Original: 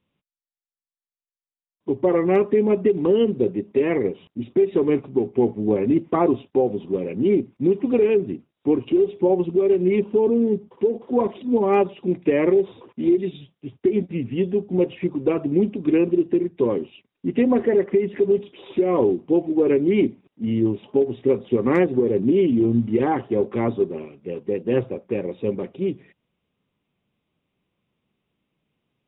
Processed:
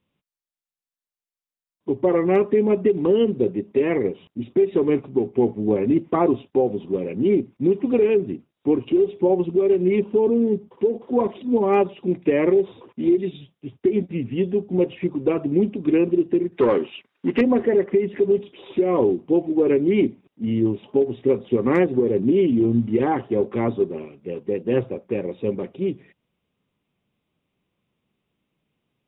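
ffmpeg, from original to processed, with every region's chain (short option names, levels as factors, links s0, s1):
-filter_complex "[0:a]asettb=1/sr,asplit=3[s0][s1][s2];[s0]atrim=end=16.524[s3];[s1]atrim=start=16.52:end=17.41,asetpts=PTS-STARTPTS,afade=t=in:d=0.004:c=qsin,afade=t=out:st=0.886:d=0.004:c=qsin,equalizer=f=1500:w=1.6:g=5,asplit=2[s4][s5];[s5]highpass=f=720:p=1,volume=6.31,asoftclip=type=tanh:threshold=0.398[s6];[s4][s6]amix=inputs=2:normalize=0,lowpass=f=3200:p=1,volume=0.501[s7];[s2]atrim=start=17.406[s8];[s3][s7]acrossfade=d=0.004:c1=hsin:c2=qsin[s9];[s9][s8]acrossfade=d=0.004:c1=qsin:c2=hsin"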